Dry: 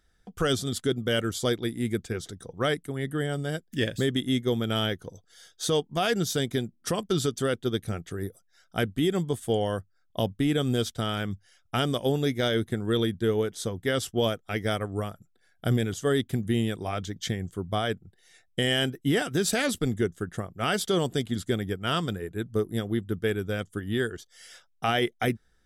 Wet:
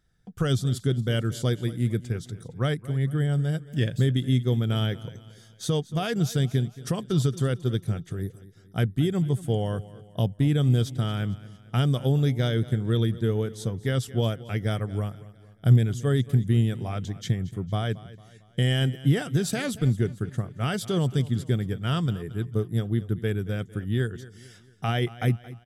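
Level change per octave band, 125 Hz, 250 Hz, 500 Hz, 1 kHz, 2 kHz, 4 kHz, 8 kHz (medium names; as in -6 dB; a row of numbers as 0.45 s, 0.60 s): +8.5 dB, +1.0 dB, -3.0 dB, -4.0 dB, -4.5 dB, -4.5 dB, -4.5 dB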